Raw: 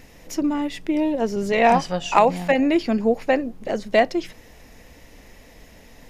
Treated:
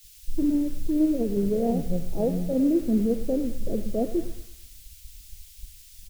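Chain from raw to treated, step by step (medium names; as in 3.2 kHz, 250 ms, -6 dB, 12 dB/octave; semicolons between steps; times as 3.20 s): inverse Chebyshev low-pass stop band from 1 kHz, stop band 40 dB; expander -40 dBFS; bass shelf 100 Hz +12 dB; in parallel at +2.5 dB: compression 20:1, threshold -29 dBFS, peak gain reduction 17 dB; on the sum: peak limiter -15 dBFS, peak gain reduction 9 dB; word length cut 8-bit, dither triangular; feedback delay 109 ms, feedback 54%, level -12.5 dB; three bands expanded up and down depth 100%; trim -2 dB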